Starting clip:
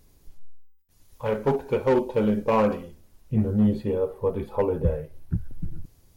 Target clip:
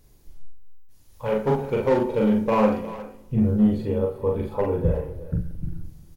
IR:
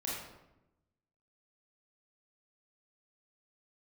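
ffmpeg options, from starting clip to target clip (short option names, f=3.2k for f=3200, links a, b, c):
-filter_complex "[0:a]asplit=2[a][b];[b]adelay=42,volume=-2dB[c];[a][c]amix=inputs=2:normalize=0,asplit=2[d][e];[e]adelay=360,highpass=300,lowpass=3.4k,asoftclip=type=hard:threshold=-16.5dB,volume=-15dB[f];[d][f]amix=inputs=2:normalize=0,asplit=2[g][h];[1:a]atrim=start_sample=2205,lowshelf=f=170:g=7[i];[h][i]afir=irnorm=-1:irlink=0,volume=-14dB[j];[g][j]amix=inputs=2:normalize=0,volume=-2dB"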